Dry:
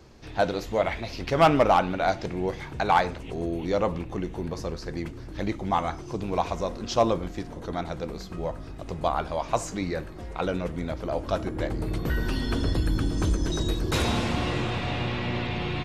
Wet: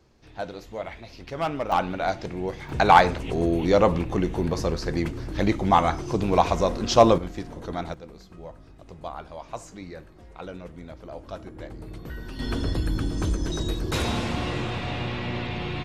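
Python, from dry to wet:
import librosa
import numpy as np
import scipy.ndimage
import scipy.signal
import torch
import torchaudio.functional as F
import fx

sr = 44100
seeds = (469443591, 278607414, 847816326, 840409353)

y = fx.gain(x, sr, db=fx.steps((0.0, -9.0), (1.72, -1.5), (2.69, 6.5), (7.18, 0.0), (7.94, -10.0), (12.39, -1.0)))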